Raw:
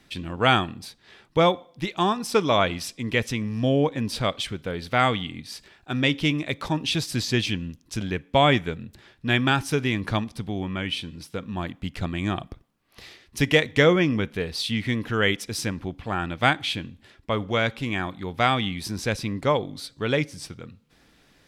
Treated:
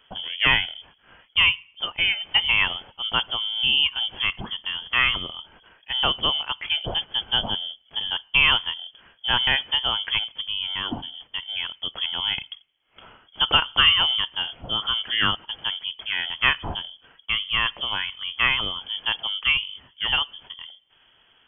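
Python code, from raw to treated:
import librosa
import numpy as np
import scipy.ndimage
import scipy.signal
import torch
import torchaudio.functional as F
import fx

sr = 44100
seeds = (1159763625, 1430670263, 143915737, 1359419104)

y = fx.freq_invert(x, sr, carrier_hz=3300)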